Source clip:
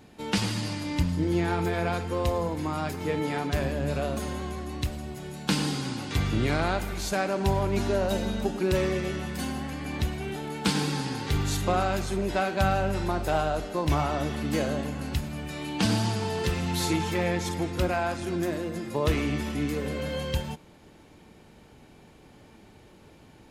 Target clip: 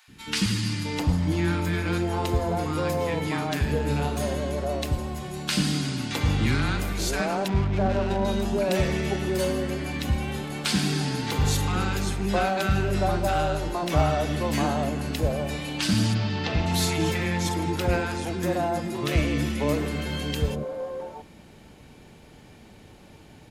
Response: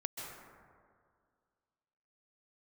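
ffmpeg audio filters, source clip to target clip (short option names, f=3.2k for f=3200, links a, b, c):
-filter_complex "[0:a]asplit=2[a][b];[b]asoftclip=type=tanh:threshold=-22dB,volume=-3dB[c];[a][c]amix=inputs=2:normalize=0,asettb=1/sr,asplit=3[d][e][f];[d]atrim=end=7.484[g];[e]atrim=start=7.48:end=8.25,asetpts=PTS-STARTPTS,afade=t=in:d=0.004:c=qsin,afade=t=out:st=0.766:d=0.004:c=qsin,adynamicsmooth=sensitivity=2.5:basefreq=590[h];[f]atrim=start=8.246[i];[g][h]acrossfade=d=0.004:c1=hsin:c2=qsin[j];[j][i]acrossfade=d=0.004:c1=qsin:c2=hsin,asplit=3[k][l][m];[k]afade=t=out:st=16.13:d=0.02[n];[l]lowpass=f=5k:w=0.5412,lowpass=f=5k:w=1.3066,afade=t=in:st=16.13:d=0.02,afade=t=out:st=16.65:d=0.02[o];[m]afade=t=in:st=16.65:d=0.02[p];[n][o][p]amix=inputs=3:normalize=0,acrossover=split=360|1100[q][r][s];[q]adelay=80[t];[r]adelay=660[u];[t][u][s]amix=inputs=3:normalize=0"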